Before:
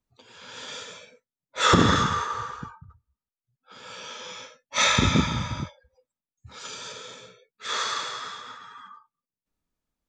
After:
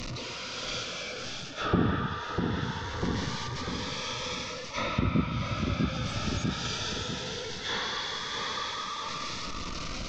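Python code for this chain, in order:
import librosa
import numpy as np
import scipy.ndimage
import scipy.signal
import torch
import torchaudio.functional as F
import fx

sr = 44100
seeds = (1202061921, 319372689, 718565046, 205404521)

y = fx.delta_mod(x, sr, bps=32000, step_db=-34.5)
y = fx.echo_feedback(y, sr, ms=647, feedback_pct=43, wet_db=-7)
y = fx.env_lowpass_down(y, sr, base_hz=2800.0, full_db=-19.0)
y = fx.rider(y, sr, range_db=5, speed_s=0.5)
y = fx.notch_cascade(y, sr, direction='rising', hz=0.21)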